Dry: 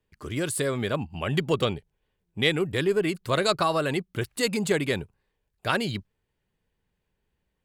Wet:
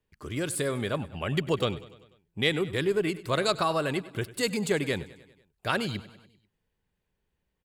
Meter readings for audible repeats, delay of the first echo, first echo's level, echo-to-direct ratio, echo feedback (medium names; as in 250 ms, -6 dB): 4, 98 ms, -18.0 dB, -16.0 dB, 58%